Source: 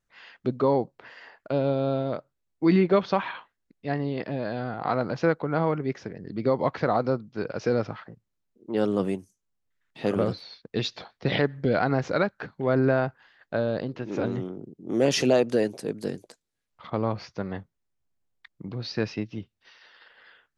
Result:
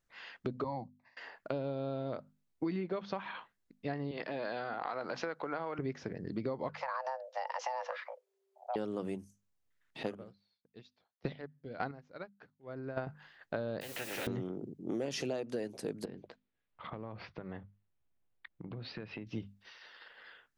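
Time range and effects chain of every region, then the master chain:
0.64–1.17 expander -40 dBFS + fixed phaser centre 2100 Hz, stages 8 + three-band expander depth 40%
4.11–5.79 weighting filter A + compressor 2.5:1, threshold -29 dBFS
6.69–8.76 frequency shift +390 Hz + compressor 2.5:1, threshold -29 dBFS
10.03–13.07 chopper 1.7 Hz, depth 60%, duty 20% + upward expander 2.5:1, over -38 dBFS
13.81–14.27 vowel filter e + requantised 12-bit, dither triangular + spectral compressor 4:1
16.05–19.27 LPF 3400 Hz 24 dB/oct + compressor 16:1, threshold -37 dBFS
whole clip: notches 50/100/150/200/250 Hz; compressor 10:1, threshold -32 dBFS; gain -1 dB

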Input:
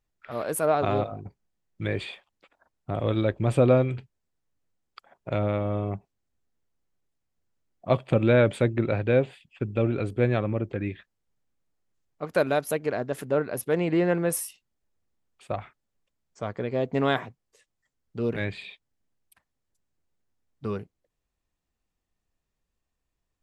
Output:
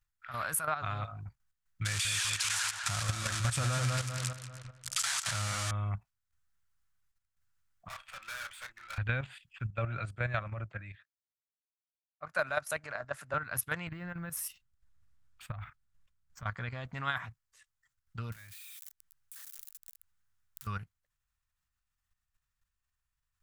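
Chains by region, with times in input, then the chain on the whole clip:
1.85–5.71 switching spikes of -13.5 dBFS + LPF 8500 Hz 24 dB/oct + darkening echo 0.197 s, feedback 50%, low-pass 3000 Hz, level -4 dB
7.88–8.98 HPF 980 Hz + doubler 32 ms -6.5 dB + tube stage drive 42 dB, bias 0.3
9.7–13.34 speaker cabinet 140–9700 Hz, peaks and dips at 250 Hz -5 dB, 610 Hz +10 dB, 3200 Hz -5 dB + three-band expander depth 70%
13.87–16.46 low shelf 470 Hz +11 dB + compressor 5:1, threshold -31 dBFS + decimation joined by straight lines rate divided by 2×
18.32–20.67 switching spikes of -24.5 dBFS + compressor 2.5:1, threshold -51 dBFS
whole clip: level quantiser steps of 11 dB; EQ curve 110 Hz 0 dB, 400 Hz -24 dB, 1400 Hz +6 dB, 2200 Hz 0 dB, 4400 Hz 0 dB, 11000 Hz +3 dB; compressor 4:1, threshold -32 dBFS; gain +3.5 dB

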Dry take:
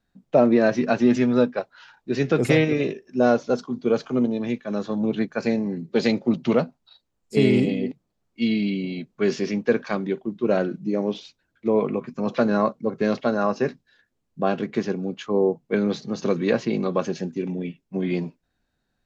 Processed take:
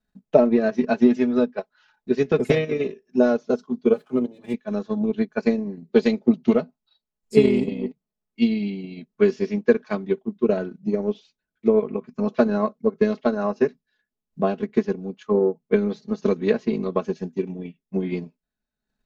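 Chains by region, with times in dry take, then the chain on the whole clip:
3.93–4.54 median filter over 9 samples + notch comb 220 Hz
whole clip: comb 4.7 ms, depth 65%; dynamic EQ 360 Hz, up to +4 dB, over -26 dBFS, Q 1; transient shaper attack +7 dB, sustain -7 dB; gain -7 dB

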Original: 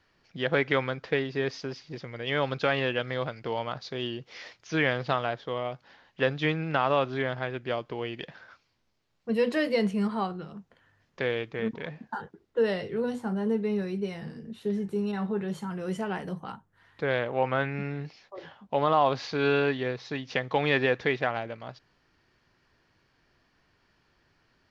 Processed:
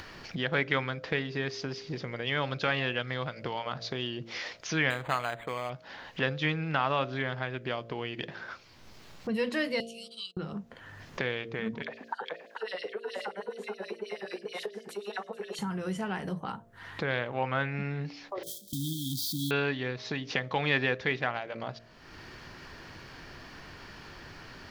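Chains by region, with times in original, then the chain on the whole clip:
4.9–5.7 tilt shelf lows -4.5 dB, about 720 Hz + decimation joined by straight lines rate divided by 8×
9.8–10.37 elliptic high-pass 2800 Hz + gate -59 dBFS, range -28 dB
11.82–15.59 echo 0.439 s -4 dB + compressor, threshold -35 dBFS + LFO high-pass sine 9.4 Hz 440–4700 Hz
18.43–19.51 switching spikes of -28.5 dBFS + gate -40 dBFS, range -17 dB + brick-wall FIR band-stop 330–3100 Hz
whole clip: de-hum 57.41 Hz, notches 12; dynamic EQ 460 Hz, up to -6 dB, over -38 dBFS, Q 0.79; upward compressor, threshold -29 dBFS

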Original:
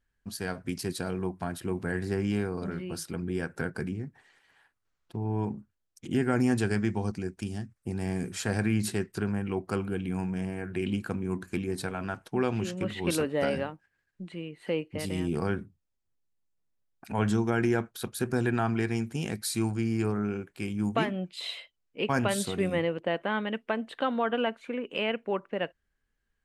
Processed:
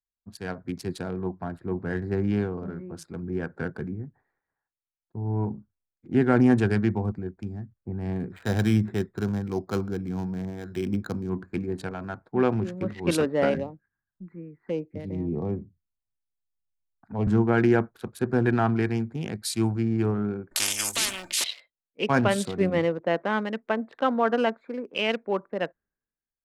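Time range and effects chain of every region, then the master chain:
8.3–11.3 careless resampling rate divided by 8×, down filtered, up hold + mismatched tape noise reduction encoder only
13.54–17.27 envelope phaser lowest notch 410 Hz, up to 1500 Hz, full sweep at -28.5 dBFS + three-band squash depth 40%
20.51–21.44 resonant high shelf 5400 Hz +13.5 dB, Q 1.5 + comb 3.3 ms, depth 70% + spectral compressor 10:1
whole clip: Wiener smoothing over 15 samples; high shelf 7000 Hz -11.5 dB; three-band expander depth 70%; gain +3.5 dB

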